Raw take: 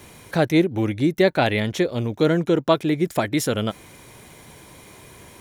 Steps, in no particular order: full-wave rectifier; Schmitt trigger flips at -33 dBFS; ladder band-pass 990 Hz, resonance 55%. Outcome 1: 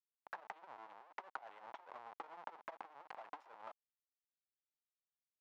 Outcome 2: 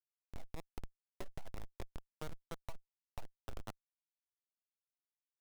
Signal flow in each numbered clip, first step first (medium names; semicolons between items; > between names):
Schmitt trigger > full-wave rectifier > ladder band-pass; ladder band-pass > Schmitt trigger > full-wave rectifier